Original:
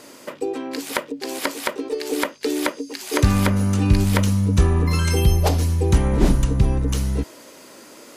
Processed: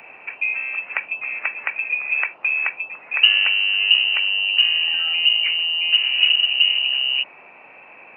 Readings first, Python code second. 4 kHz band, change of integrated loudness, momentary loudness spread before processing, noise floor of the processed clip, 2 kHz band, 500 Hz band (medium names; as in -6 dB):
+18.0 dB, +4.0 dB, 10 LU, -45 dBFS, +13.0 dB, under -20 dB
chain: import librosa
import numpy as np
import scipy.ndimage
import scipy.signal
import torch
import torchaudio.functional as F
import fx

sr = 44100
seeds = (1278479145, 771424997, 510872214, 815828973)

y = fx.freq_invert(x, sr, carrier_hz=2900)
y = fx.rider(y, sr, range_db=5, speed_s=2.0)
y = fx.dmg_noise_band(y, sr, seeds[0], low_hz=100.0, high_hz=920.0, level_db=-35.0)
y = np.diff(y, prepend=0.0)
y = F.gain(torch.from_numpy(y), 6.5).numpy()